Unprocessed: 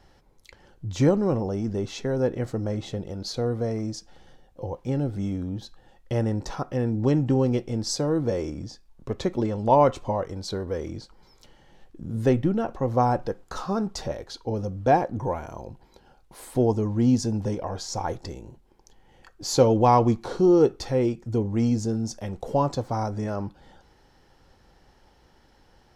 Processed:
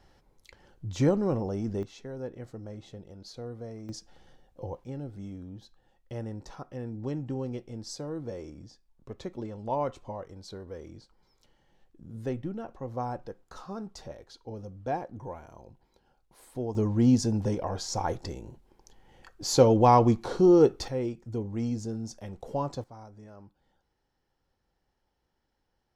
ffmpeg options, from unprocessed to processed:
ffmpeg -i in.wav -af "asetnsamples=nb_out_samples=441:pad=0,asendcmd='1.83 volume volume -13.5dB;3.89 volume volume -5dB;4.84 volume volume -12dB;16.75 volume volume -1dB;20.88 volume volume -8dB;22.84 volume volume -20dB',volume=-4dB" out.wav

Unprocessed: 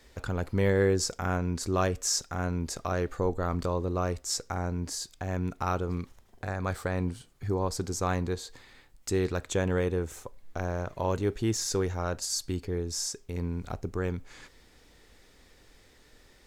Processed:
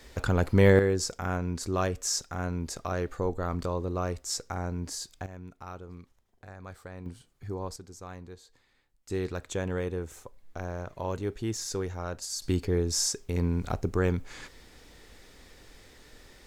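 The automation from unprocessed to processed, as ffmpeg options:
ffmpeg -i in.wav -af "asetnsamples=nb_out_samples=441:pad=0,asendcmd='0.79 volume volume -1.5dB;5.26 volume volume -13dB;7.06 volume volume -6.5dB;7.76 volume volume -14.5dB;9.1 volume volume -4dB;12.42 volume volume 5dB',volume=6dB" out.wav

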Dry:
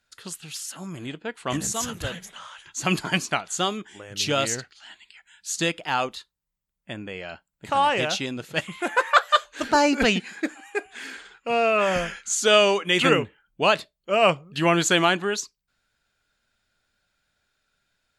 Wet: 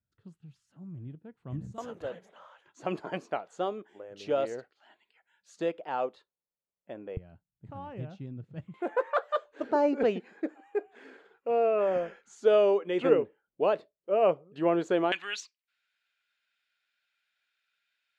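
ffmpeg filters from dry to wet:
ffmpeg -i in.wav -af "asetnsamples=nb_out_samples=441:pad=0,asendcmd='1.78 bandpass f 520;7.17 bandpass f 110;8.74 bandpass f 460;15.12 bandpass f 2500',bandpass=frequency=110:width_type=q:width=1.9:csg=0" out.wav

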